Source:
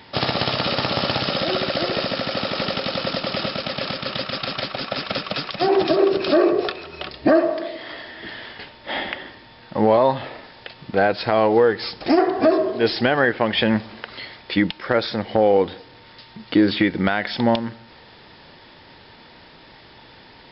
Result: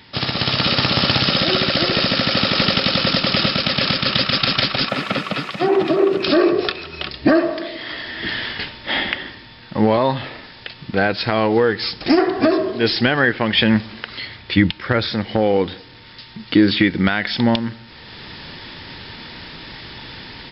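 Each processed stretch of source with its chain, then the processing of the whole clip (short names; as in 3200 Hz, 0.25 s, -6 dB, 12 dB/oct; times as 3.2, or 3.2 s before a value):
4.89–6.23 switching spikes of -24.5 dBFS + BPF 140–2100 Hz + notch 1600 Hz, Q 13
14.27–15.1 LPF 4900 Hz + bell 89 Hz +9.5 dB 0.97 oct
whole clip: AGC; bell 650 Hz -9 dB 1.8 oct; gain +2 dB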